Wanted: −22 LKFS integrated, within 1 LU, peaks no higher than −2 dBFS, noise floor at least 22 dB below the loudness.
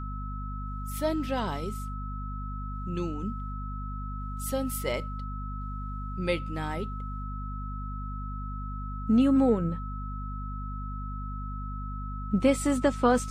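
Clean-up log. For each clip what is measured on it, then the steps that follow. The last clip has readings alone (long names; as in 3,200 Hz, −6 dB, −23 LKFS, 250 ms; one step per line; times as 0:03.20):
mains hum 50 Hz; hum harmonics up to 250 Hz; level of the hum −33 dBFS; interfering tone 1,300 Hz; level of the tone −40 dBFS; integrated loudness −31.5 LKFS; sample peak −11.0 dBFS; target loudness −22.0 LKFS
→ hum removal 50 Hz, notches 5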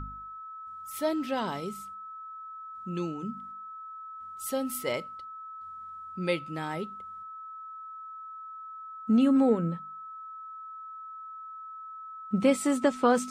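mains hum none found; interfering tone 1,300 Hz; level of the tone −40 dBFS
→ notch filter 1,300 Hz, Q 30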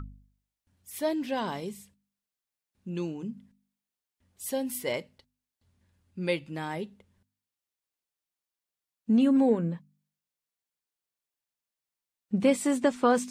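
interfering tone none found; integrated loudness −28.5 LKFS; sample peak −11.0 dBFS; target loudness −22.0 LKFS
→ level +6.5 dB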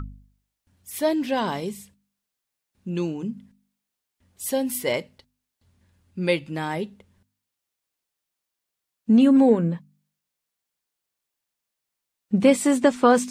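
integrated loudness −22.0 LKFS; sample peak −4.5 dBFS; background noise floor −84 dBFS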